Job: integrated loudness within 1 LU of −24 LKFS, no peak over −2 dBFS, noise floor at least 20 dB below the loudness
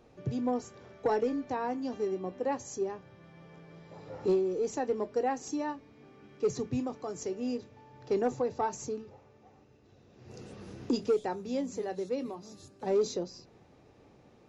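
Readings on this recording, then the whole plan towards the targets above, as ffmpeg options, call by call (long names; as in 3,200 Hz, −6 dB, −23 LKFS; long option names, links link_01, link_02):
integrated loudness −33.0 LKFS; sample peak −20.0 dBFS; target loudness −24.0 LKFS
→ -af "volume=9dB"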